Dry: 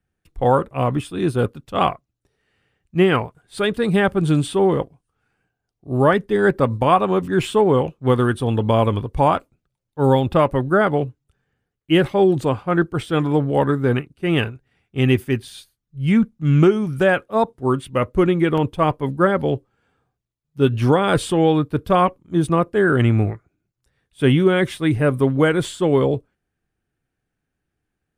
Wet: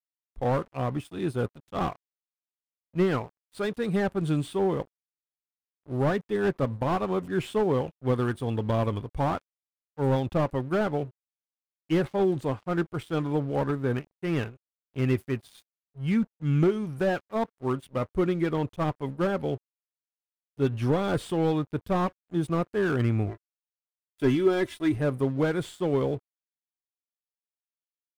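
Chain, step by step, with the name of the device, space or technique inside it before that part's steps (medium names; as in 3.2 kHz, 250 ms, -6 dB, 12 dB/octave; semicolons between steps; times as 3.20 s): early transistor amplifier (crossover distortion -41 dBFS; slew-rate limiter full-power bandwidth 140 Hz); 23.28–24.96 s: comb 3 ms, depth 63%; trim -8.5 dB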